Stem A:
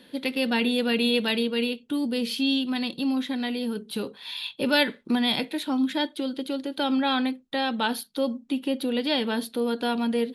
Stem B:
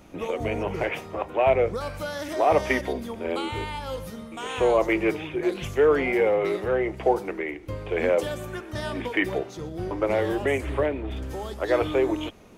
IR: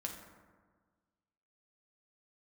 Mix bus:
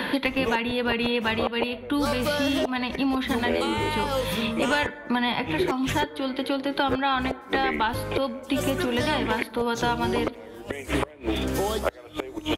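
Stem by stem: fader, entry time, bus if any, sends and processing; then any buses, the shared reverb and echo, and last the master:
-6.5 dB, 0.00 s, send -11 dB, ten-band EQ 1000 Hz +12 dB, 2000 Hz +7 dB, 8000 Hz -11 dB
+2.5 dB, 0.25 s, send -22.5 dB, flipped gate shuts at -17 dBFS, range -30 dB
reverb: on, RT60 1.5 s, pre-delay 5 ms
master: high shelf 6700 Hz +4.5 dB; three-band squash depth 100%

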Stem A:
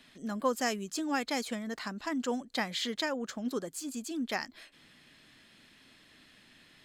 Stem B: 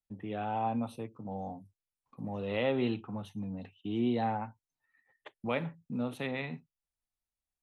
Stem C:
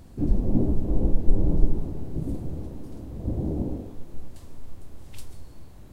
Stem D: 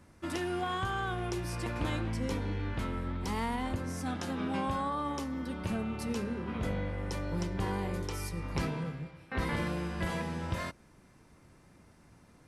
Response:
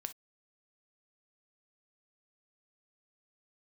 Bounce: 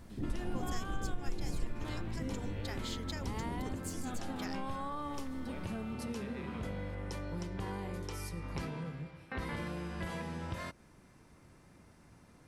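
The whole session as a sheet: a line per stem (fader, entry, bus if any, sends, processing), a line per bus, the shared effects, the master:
-9.5 dB, 0.10 s, no send, high shelf 3400 Hz +11.5 dB
-7.0 dB, 0.00 s, no send, limiter -28.5 dBFS, peak gain reduction 9.5 dB
-5.5 dB, 0.00 s, no send, dry
-0.5 dB, 0.00 s, no send, dry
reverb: off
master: compressor 2:1, threshold -40 dBFS, peak gain reduction 14.5 dB

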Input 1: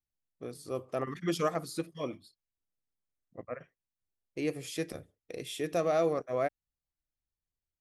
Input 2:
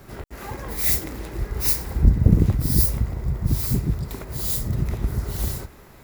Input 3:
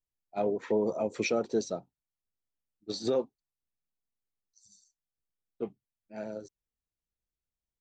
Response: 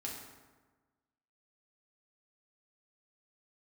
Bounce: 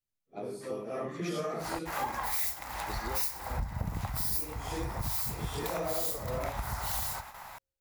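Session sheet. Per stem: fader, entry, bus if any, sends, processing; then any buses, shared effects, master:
-1.5 dB, 0.00 s, no send, phase scrambler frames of 0.2 s
+3.0 dB, 1.55 s, no send, resonant low shelf 560 Hz -13.5 dB, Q 3; gate with hold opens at -39 dBFS
+2.5 dB, 0.00 s, no send, compressor, threshold -31 dBFS, peak gain reduction 8.5 dB; resonator 67 Hz, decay 1.7 s, harmonics all, mix 70%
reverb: off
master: compressor 6:1, threshold -30 dBFS, peak gain reduction 16 dB

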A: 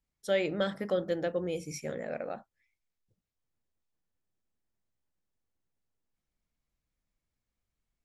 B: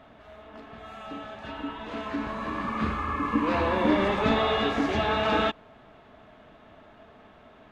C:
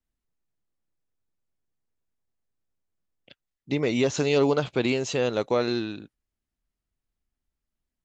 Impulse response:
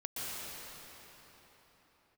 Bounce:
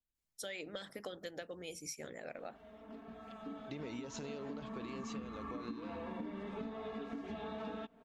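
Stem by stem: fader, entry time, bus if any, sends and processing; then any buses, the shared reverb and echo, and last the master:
-5.0 dB, 0.15 s, no send, high shelf 3100 Hz +10 dB; harmonic-percussive split harmonic -11 dB
-14.5 dB, 2.35 s, no send, bell 240 Hz +9 dB 2 oct; comb 4.4 ms, depth 67%
-11.5 dB, 0.00 s, no send, limiter -19 dBFS, peak gain reduction 8 dB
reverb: off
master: compressor 12:1, threshold -40 dBFS, peak gain reduction 17 dB

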